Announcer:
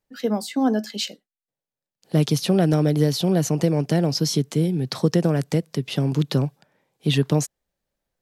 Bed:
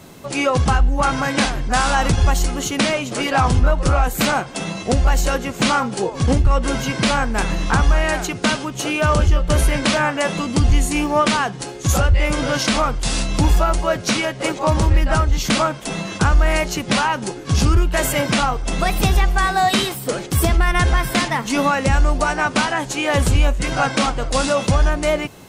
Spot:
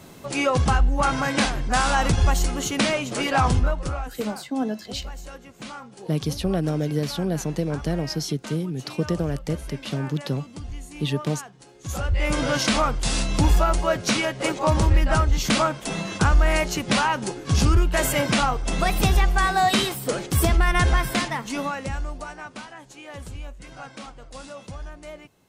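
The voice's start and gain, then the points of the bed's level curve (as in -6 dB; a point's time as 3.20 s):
3.95 s, -5.5 dB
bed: 3.52 s -3.5 dB
4.31 s -20.5 dB
11.65 s -20.5 dB
12.32 s -3 dB
20.95 s -3 dB
22.67 s -21 dB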